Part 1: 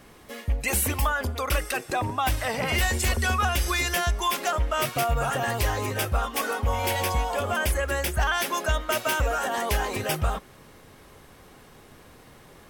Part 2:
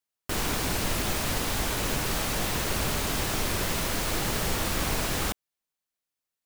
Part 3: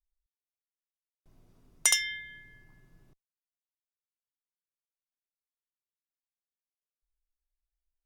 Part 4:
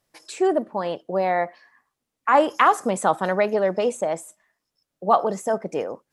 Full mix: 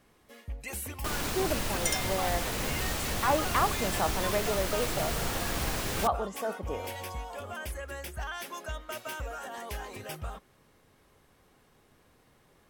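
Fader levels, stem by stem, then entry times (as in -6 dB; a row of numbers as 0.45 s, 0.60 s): -13.0 dB, -4.5 dB, -7.5 dB, -10.5 dB; 0.00 s, 0.75 s, 0.00 s, 0.95 s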